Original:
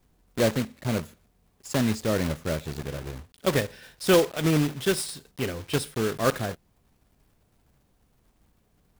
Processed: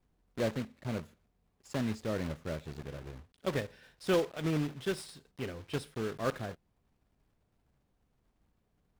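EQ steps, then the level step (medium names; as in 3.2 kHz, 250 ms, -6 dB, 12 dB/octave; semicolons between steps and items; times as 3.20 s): low-pass 3.8 kHz 6 dB/octave; -9.0 dB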